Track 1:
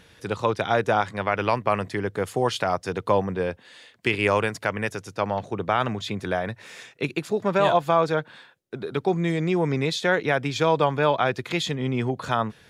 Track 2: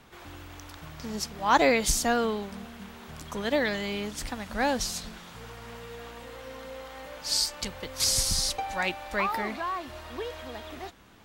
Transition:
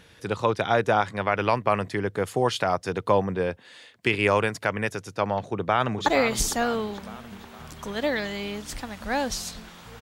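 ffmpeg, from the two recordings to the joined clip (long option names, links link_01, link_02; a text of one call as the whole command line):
ffmpeg -i cue0.wav -i cue1.wav -filter_complex "[0:a]apad=whole_dur=10.01,atrim=end=10.01,atrim=end=6.062[link_01];[1:a]atrim=start=1.548:end=5.5[link_02];[link_01][link_02]acrossfade=duration=0.004:curve1=hsin:curve2=hsin,asplit=2[link_03][link_04];[link_04]afade=type=in:start_time=5.45:duration=0.01,afade=type=out:start_time=6.06:duration=0.01,aecho=0:1:460|920|1380|1840|2300|2760:0.354813|0.177407|0.0887033|0.0443517|0.0221758|0.0110879[link_05];[link_03][link_05]amix=inputs=2:normalize=0" out.wav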